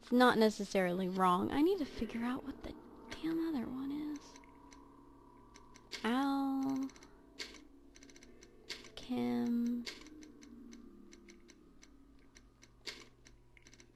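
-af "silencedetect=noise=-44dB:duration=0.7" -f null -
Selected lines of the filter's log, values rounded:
silence_start: 4.73
silence_end: 5.56 | silence_duration: 0.83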